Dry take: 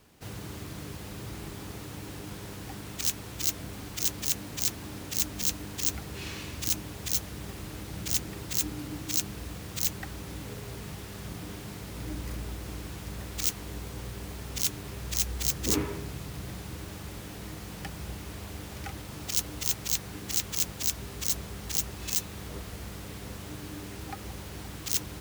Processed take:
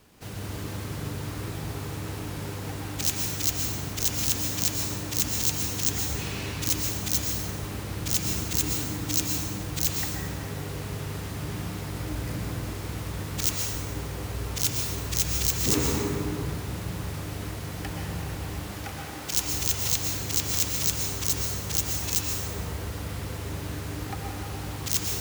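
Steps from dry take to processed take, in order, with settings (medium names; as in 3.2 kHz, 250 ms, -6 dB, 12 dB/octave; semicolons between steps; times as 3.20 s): 18.53–19.33 s: high-pass 210 Hz 6 dB/octave; plate-style reverb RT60 2.6 s, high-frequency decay 0.4×, pre-delay 105 ms, DRR -1.5 dB; trim +2 dB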